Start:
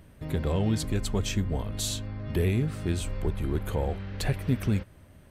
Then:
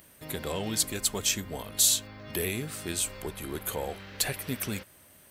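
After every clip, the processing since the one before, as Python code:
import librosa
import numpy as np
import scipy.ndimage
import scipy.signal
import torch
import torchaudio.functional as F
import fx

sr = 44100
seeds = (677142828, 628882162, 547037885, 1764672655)

y = fx.riaa(x, sr, side='recording')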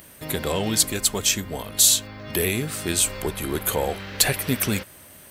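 y = fx.rider(x, sr, range_db=4, speed_s=2.0)
y = y * librosa.db_to_amplitude(6.5)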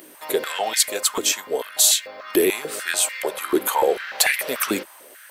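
y = fx.filter_held_highpass(x, sr, hz=6.8, low_hz=330.0, high_hz=2000.0)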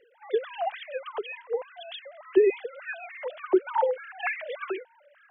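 y = fx.sine_speech(x, sr)
y = y * librosa.db_to_amplitude(-6.5)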